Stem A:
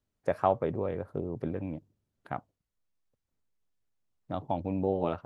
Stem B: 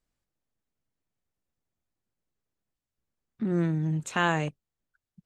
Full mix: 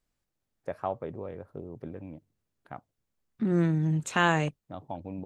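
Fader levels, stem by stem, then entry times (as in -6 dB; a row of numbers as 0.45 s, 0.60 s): -6.5 dB, +1.5 dB; 0.40 s, 0.00 s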